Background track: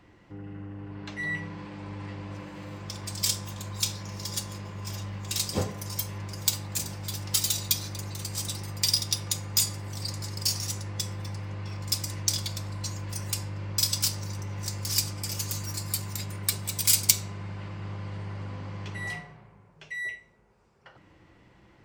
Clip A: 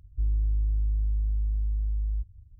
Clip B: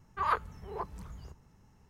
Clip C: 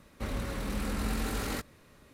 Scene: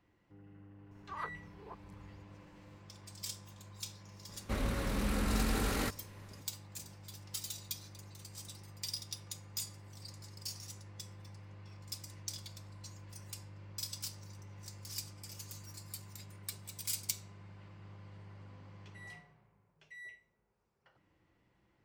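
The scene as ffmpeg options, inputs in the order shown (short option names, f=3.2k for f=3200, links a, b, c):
-filter_complex "[0:a]volume=-16dB[a];[2:a]acompressor=mode=upward:threshold=-41dB:ratio=2.5:attack=3.2:release=140:knee=2.83:detection=peak,atrim=end=1.89,asetpts=PTS-STARTPTS,volume=-13dB,afade=t=in:d=0.004:c=hsin,afade=t=out:st=1.886:d=0.004:c=hsin,adelay=910[b];[3:a]atrim=end=2.13,asetpts=PTS-STARTPTS,afade=t=in:d=0.004:c=hsin,afade=t=out:st=2.126:d=0.004:c=hsin,adelay=189189S[c];[a][b][c]amix=inputs=3:normalize=0"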